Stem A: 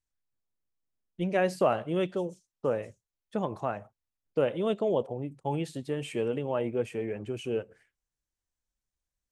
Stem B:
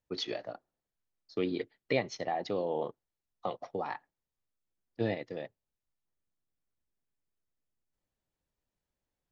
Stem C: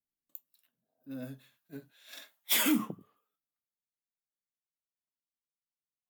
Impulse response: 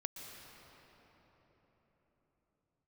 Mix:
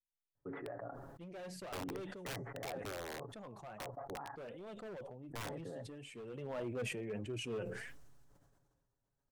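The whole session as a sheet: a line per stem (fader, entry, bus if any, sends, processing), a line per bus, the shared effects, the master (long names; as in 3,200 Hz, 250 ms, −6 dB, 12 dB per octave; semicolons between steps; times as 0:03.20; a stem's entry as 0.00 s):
0:06.24 −14 dB → 0:06.47 −5.5 dB, 0.00 s, no bus, no send, pitch vibrato 0.63 Hz 17 cents; flanger 1.5 Hz, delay 2.8 ms, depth 3.1 ms, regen +39%; hard clipping −31 dBFS, distortion −8 dB
−1.5 dB, 0.35 s, bus A, no send, Butterworth low-pass 1,700 Hz 48 dB per octave; comb filter 7.2 ms, depth 54%
muted
bus A: 0.0 dB, wrap-around overflow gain 27 dB; brickwall limiter −38 dBFS, peak gain reduction 11 dB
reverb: not used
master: parametric band 120 Hz +7 dB 0.45 octaves; pitch vibrato 0.63 Hz 22 cents; level that may fall only so fast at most 34 dB per second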